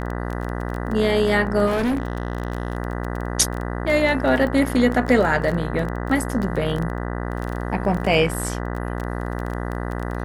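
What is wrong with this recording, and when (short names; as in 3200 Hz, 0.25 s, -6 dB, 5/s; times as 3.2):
buzz 60 Hz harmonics 33 -27 dBFS
crackle 17/s -25 dBFS
1.66–2.77 clipped -18 dBFS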